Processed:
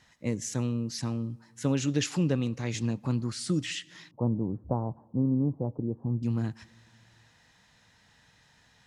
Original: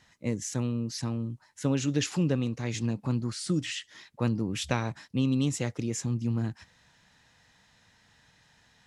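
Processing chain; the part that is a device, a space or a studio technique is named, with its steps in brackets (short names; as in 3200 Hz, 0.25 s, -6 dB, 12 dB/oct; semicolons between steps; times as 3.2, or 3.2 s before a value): compressed reverb return (on a send at -11.5 dB: reverb RT60 1.3 s, pre-delay 64 ms + compressor 5:1, threshold -44 dBFS, peak gain reduction 19.5 dB); 4.11–6.23 on the sum: steep low-pass 990 Hz 48 dB/oct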